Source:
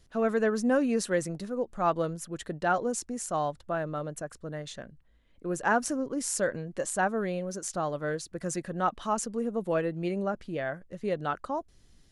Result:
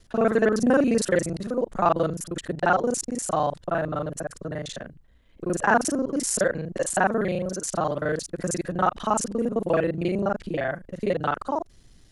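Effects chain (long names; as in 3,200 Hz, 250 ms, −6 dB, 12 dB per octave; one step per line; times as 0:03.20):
reversed piece by piece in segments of 35 ms
level +6 dB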